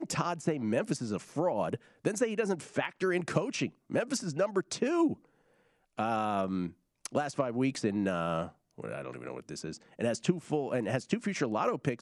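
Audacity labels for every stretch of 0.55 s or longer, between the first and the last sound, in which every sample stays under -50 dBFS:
5.250000	5.980000	silence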